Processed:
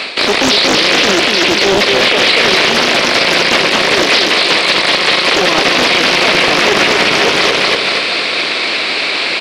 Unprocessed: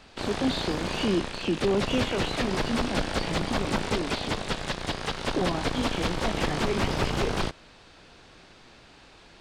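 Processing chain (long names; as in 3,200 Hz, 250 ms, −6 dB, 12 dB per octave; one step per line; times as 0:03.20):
parametric band 6,400 Hz −9.5 dB 0.47 octaves
reversed playback
downward compressor, threshold −38 dBFS, peak gain reduction 16.5 dB
reversed playback
loudspeaker in its box 430–9,800 Hz, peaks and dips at 850 Hz −8 dB, 1,500 Hz −4 dB, 2,300 Hz +9 dB, 4,200 Hz +8 dB
repeating echo 239 ms, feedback 49%, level −3.5 dB
boost into a limiter +34.5 dB
highs frequency-modulated by the lows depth 0.58 ms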